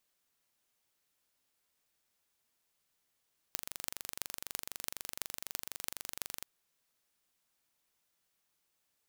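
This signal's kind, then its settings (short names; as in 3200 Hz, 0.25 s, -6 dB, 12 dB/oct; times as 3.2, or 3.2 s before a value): pulse train 24/s, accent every 8, -7 dBFS 2.90 s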